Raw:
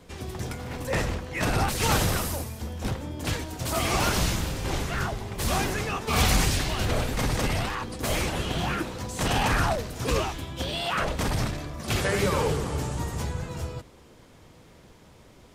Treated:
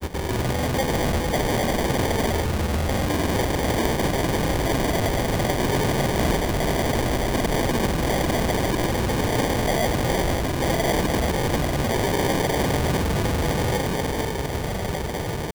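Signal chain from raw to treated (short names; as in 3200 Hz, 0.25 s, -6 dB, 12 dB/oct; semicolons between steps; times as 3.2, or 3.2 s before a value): diffused feedback echo 1.514 s, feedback 59%, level -12 dB; in parallel at -8.5 dB: sine folder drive 19 dB, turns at -10 dBFS; on the sum: grains; sample-and-hold 33×; low shelf 190 Hz -3 dB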